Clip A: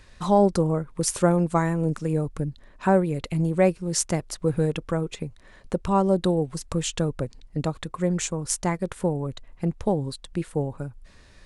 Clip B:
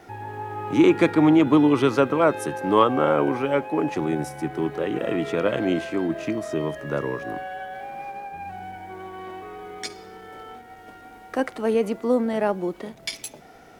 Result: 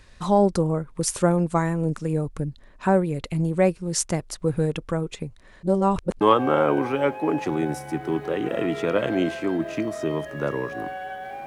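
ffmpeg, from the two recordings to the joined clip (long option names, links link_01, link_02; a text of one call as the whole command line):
ffmpeg -i cue0.wav -i cue1.wav -filter_complex "[0:a]apad=whole_dur=11.46,atrim=end=11.46,asplit=2[link_01][link_02];[link_01]atrim=end=5.632[link_03];[link_02]atrim=start=5.628:end=6.212,asetpts=PTS-STARTPTS,areverse[link_04];[1:a]atrim=start=2.708:end=7.96[link_05];[link_03][link_04]acrossfade=duration=0.004:curve1=hsin:curve2=hsin[link_06];[link_06][link_05]acrossfade=duration=0.004:curve1=hsin:curve2=hsin" out.wav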